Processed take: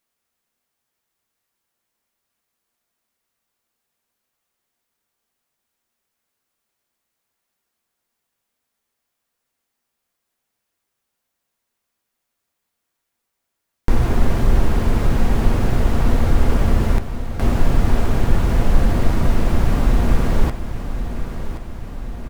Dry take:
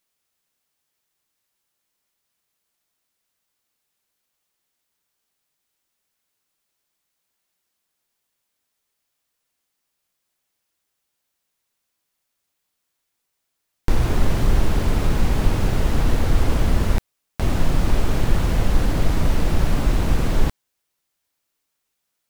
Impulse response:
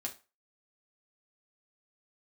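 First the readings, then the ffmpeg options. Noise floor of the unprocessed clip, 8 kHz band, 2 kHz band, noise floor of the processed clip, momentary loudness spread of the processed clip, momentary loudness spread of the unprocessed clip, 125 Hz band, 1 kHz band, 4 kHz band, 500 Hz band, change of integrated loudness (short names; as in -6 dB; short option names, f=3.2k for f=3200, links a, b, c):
-77 dBFS, -2.0 dB, +1.0 dB, -78 dBFS, 11 LU, 4 LU, +2.5 dB, +2.5 dB, -2.0 dB, +2.5 dB, +2.0 dB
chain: -filter_complex "[0:a]aecho=1:1:1075|2150|3225|4300|5375|6450|7525:0.282|0.163|0.0948|0.055|0.0319|0.0185|0.0107,asplit=2[a][b];[1:a]atrim=start_sample=2205,lowpass=2.5k[c];[b][c]afir=irnorm=-1:irlink=0,volume=-1.5dB[d];[a][d]amix=inputs=2:normalize=0,volume=-2dB"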